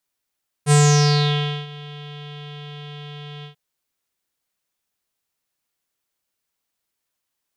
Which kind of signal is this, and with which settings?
subtractive voice square D3 12 dB per octave, low-pass 3,300 Hz, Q 7.2, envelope 1.5 octaves, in 0.68 s, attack 54 ms, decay 0.95 s, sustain −24 dB, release 0.11 s, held 2.78 s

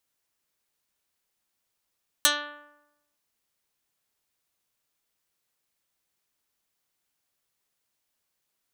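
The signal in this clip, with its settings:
Karplus-Strong string D4, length 0.92 s, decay 0.95 s, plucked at 0.12, dark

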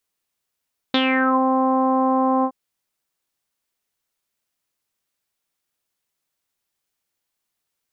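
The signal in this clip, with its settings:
subtractive voice saw C4 24 dB per octave, low-pass 960 Hz, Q 6.1, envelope 2 octaves, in 0.44 s, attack 2.9 ms, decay 0.06 s, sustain −3.5 dB, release 0.07 s, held 1.50 s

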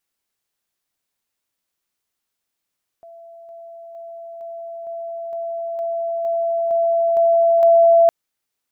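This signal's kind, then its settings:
level staircase 672 Hz −38.5 dBFS, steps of 3 dB, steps 11, 0.46 s 0.00 s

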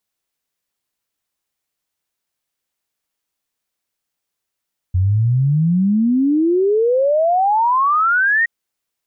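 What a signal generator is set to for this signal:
exponential sine sweep 88 Hz → 1,900 Hz 3.52 s −12 dBFS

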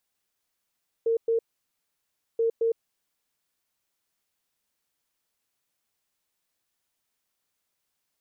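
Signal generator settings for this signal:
beeps in groups sine 457 Hz, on 0.11 s, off 0.11 s, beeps 2, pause 1.00 s, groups 2, −20.5 dBFS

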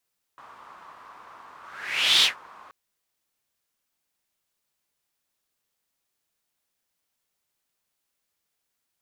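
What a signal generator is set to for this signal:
pass-by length 2.33 s, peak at 0:01.85, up 0.68 s, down 0.15 s, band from 1,100 Hz, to 3,600 Hz, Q 4.3, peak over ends 30 dB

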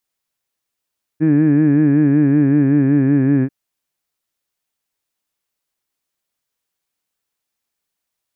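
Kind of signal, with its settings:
vowel from formants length 2.29 s, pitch 152 Hz, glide −2 semitones, F1 300 Hz, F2 1,700 Hz, F3 2,400 Hz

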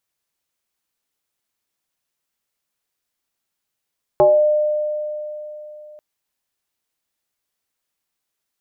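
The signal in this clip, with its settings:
two-operator FM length 1.79 s, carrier 603 Hz, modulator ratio 0.38, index 1.2, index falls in 0.41 s exponential, decay 3.45 s, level −8 dB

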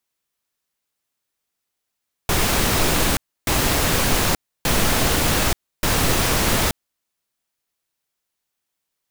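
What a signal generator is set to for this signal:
noise bursts pink, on 0.88 s, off 0.30 s, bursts 4, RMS −18.5 dBFS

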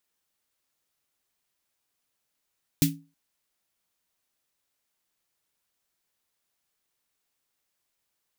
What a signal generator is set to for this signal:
synth snare length 0.32 s, tones 160 Hz, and 280 Hz, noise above 2,100 Hz, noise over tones −3 dB, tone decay 0.32 s, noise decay 0.18 s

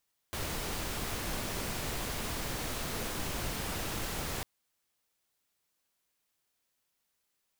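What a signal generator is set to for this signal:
noise pink, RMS −36 dBFS 4.10 s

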